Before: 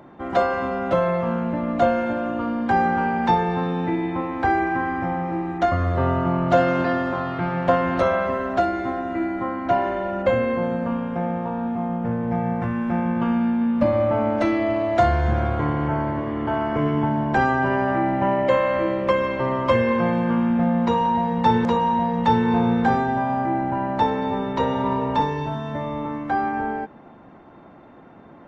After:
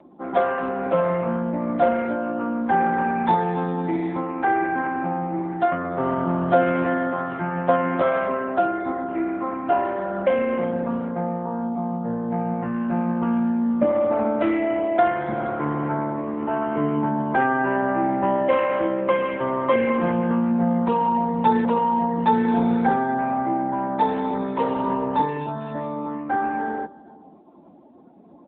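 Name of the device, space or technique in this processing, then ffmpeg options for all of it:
mobile call with aggressive noise cancelling: -filter_complex "[0:a]highpass=f=160:w=0.5412,highpass=f=160:w=1.3066,asplit=2[s0][s1];[s1]adelay=478.1,volume=0.0794,highshelf=f=4000:g=-10.8[s2];[s0][s2]amix=inputs=2:normalize=0,afftdn=nr=19:nf=-42" -ar 8000 -c:a libopencore_amrnb -b:a 10200

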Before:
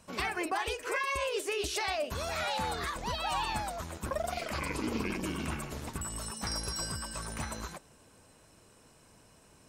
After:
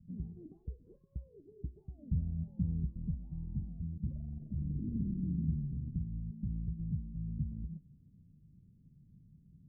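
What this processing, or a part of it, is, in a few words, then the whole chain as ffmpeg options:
the neighbour's flat through the wall: -filter_complex "[0:a]asettb=1/sr,asplit=3[s0][s1][s2];[s0]atrim=end=1.984[s3];[s1]atrim=start=1.98:end=2.9,asetpts=PTS-STARTPTS,afade=t=in:d=0.004:c=qsin,afade=t=out:st=0.916:d=0.004:c=qsin,lowshelf=f=390:g=5[s4];[s2]atrim=start=2.896[s5];[s3][s4]acrossfade=d=0.004:c1=hsin:c2=qsin[s6];[s6][s5]acrossfade=d=0.004:c1=qsin:c2=hsin,lowpass=f=200:w=0.5412,lowpass=f=200:w=1.3066,equalizer=f=160:t=o:w=0.63:g=8,volume=1.26"

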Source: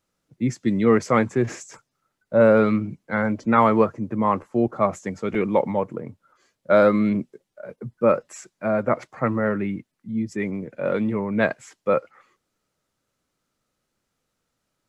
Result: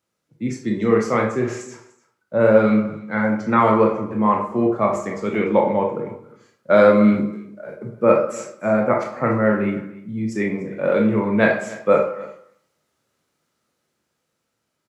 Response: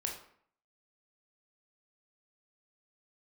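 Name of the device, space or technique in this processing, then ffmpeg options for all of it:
far laptop microphone: -filter_complex "[0:a]asettb=1/sr,asplit=3[s0][s1][s2];[s0]atrim=end=5.384[s3];[s1]atrim=start=5.38:end=5.94,asetpts=PTS-STARTPTS,afade=t=in:d=0.004:c=qsin,afade=t=out:st=0.556:d=0.004:c=qsin,lowpass=f=6400:w=0.5412,lowpass=f=6400:w=1.3066[s4];[s2]atrim=start=5.936[s5];[s3][s4]acrossfade=d=0.004:c1=hsin:c2=qsin[s6];[s6][s5]acrossfade=d=0.004:c1=qsin:c2=hsin,aecho=1:1:295:0.0944[s7];[1:a]atrim=start_sample=2205[s8];[s7][s8]afir=irnorm=-1:irlink=0,highpass=110,dynaudnorm=f=720:g=7:m=3.76,volume=0.891"

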